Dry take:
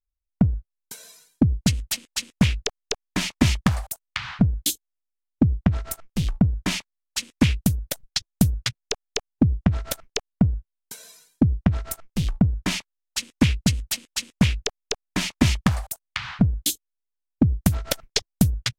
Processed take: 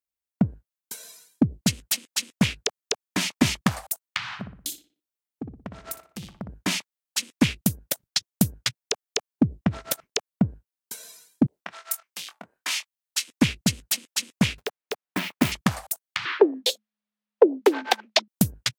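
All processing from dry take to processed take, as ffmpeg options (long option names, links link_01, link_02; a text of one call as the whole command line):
ffmpeg -i in.wav -filter_complex "[0:a]asettb=1/sr,asplit=3[link_01][link_02][link_03];[link_01]atrim=end=4.254[link_04];[link_02]atrim=start=4.25:end=6.49,asetpts=PTS-STARTPTS,afade=type=in:duration=0.004:curve=qsin,afade=type=out:start_time=2.236:duration=0.004:curve=qsin,acompressor=threshold=-30dB:ratio=5:attack=3.2:release=140:knee=1:detection=peak,asplit=2[link_05][link_06];[link_06]adelay=60,lowpass=frequency=2900:poles=1,volume=-8dB,asplit=2[link_07][link_08];[link_08]adelay=60,lowpass=frequency=2900:poles=1,volume=0.42,asplit=2[link_09][link_10];[link_10]adelay=60,lowpass=frequency=2900:poles=1,volume=0.42,asplit=2[link_11][link_12];[link_12]adelay=60,lowpass=frequency=2900:poles=1,volume=0.42,asplit=2[link_13][link_14];[link_14]adelay=60,lowpass=frequency=2900:poles=1,volume=0.42[link_15];[link_05][link_07][link_09][link_11][link_13][link_15]amix=inputs=6:normalize=0,atrim=end_sample=98784[link_16];[link_03]atrim=start=6.486[link_17];[link_04][link_16]acrossfade=duration=0.004:curve1=hsin:curve2=qsin[link_18];[link_18][link_17]acrossfade=duration=0.004:curve1=qsin:curve2=hsin,asettb=1/sr,asplit=3[link_19][link_20][link_21];[link_19]atrim=end=11.464[link_22];[link_20]atrim=start=11.46:end=13.28,asetpts=PTS-STARTPTS,afade=type=in:duration=0.004:curve=qsin,afade=type=out:start_time=1.816:duration=0.004:curve=qsin,highpass=1100,asplit=2[link_23][link_24];[link_24]adelay=24,volume=-9.5dB[link_25];[link_23][link_25]amix=inputs=2:normalize=0,atrim=end_sample=80262[link_26];[link_21]atrim=start=13.276[link_27];[link_22][link_26]acrossfade=duration=0.004:curve1=hsin:curve2=qsin[link_28];[link_28][link_27]acrossfade=duration=0.004:curve1=qsin:curve2=hsin,asettb=1/sr,asplit=3[link_29][link_30][link_31];[link_29]atrim=end=14.584[link_32];[link_30]atrim=start=14.58:end=15.52,asetpts=PTS-STARTPTS,afade=type=in:duration=0.004:curve=qsin,afade=type=out:start_time=0.936:duration=0.004:curve=qsin,lowpass=2600,lowshelf=frequency=130:gain=-5.5,acrusher=bits=3:mode=log:mix=0:aa=0.000001[link_33];[link_31]atrim=start=15.516[link_34];[link_32][link_33]acrossfade=duration=0.004:curve1=hsin:curve2=qsin[link_35];[link_35][link_34]acrossfade=duration=0.004:curve1=qsin:curve2=hsin,asettb=1/sr,asplit=3[link_36][link_37][link_38];[link_36]atrim=end=16.254[link_39];[link_37]atrim=start=16.25:end=18.28,asetpts=PTS-STARTPTS,afade=type=in:duration=0.004:curve=qsin,afade=type=out:start_time=2.026:duration=0.004:curve=qsin,acrossover=split=170 4200:gain=0.158 1 0.0794[link_40][link_41][link_42];[link_40][link_41][link_42]amix=inputs=3:normalize=0,acontrast=81,afreqshift=210[link_43];[link_38]atrim=start=18.276[link_44];[link_39][link_43]acrossfade=duration=0.004:curve1=hsin:curve2=qsin[link_45];[link_45][link_44]acrossfade=duration=0.004:curve1=qsin:curve2=hsin,highpass=170,highshelf=frequency=9900:gain=5.5" out.wav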